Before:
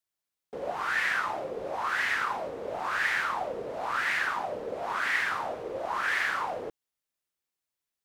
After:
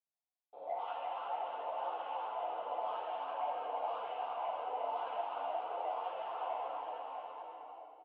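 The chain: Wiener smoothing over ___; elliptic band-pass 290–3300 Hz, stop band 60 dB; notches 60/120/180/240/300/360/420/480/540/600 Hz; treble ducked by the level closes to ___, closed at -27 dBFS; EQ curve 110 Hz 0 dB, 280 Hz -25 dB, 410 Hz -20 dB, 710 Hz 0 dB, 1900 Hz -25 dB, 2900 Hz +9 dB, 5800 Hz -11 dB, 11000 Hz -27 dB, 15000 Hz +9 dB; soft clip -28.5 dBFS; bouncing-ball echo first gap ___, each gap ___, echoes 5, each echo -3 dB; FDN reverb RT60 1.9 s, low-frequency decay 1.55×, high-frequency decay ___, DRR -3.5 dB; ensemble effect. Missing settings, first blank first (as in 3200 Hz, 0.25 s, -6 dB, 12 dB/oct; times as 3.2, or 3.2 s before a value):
15 samples, 790 Hz, 0.35 s, 0.85×, 0.95×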